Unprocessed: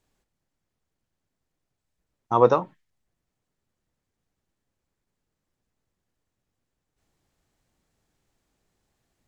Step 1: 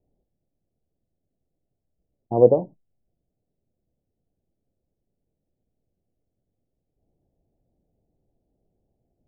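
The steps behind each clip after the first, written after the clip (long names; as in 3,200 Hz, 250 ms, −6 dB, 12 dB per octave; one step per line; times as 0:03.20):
Butterworth low-pass 720 Hz 48 dB per octave
level +3.5 dB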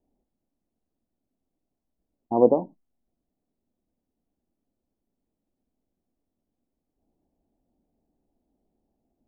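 octave-band graphic EQ 125/250/500/1,000 Hz −10/+10/−4/+11 dB
level −4 dB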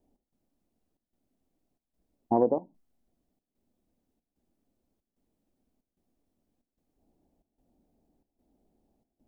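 downward compressor 10 to 1, threshold −23 dBFS, peak gain reduction 13 dB
gate pattern "xx..xxxxxx" 186 BPM −12 dB
level +3.5 dB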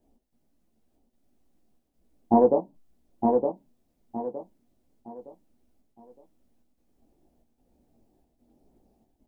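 multi-voice chorus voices 6, 0.95 Hz, delay 17 ms, depth 4.6 ms
on a send: repeating echo 914 ms, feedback 31%, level −4 dB
on the sum: level +7.5 dB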